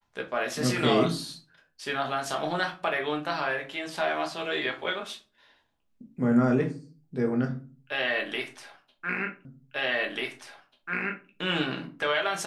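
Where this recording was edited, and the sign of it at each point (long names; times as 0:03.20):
0:09.45: the same again, the last 1.84 s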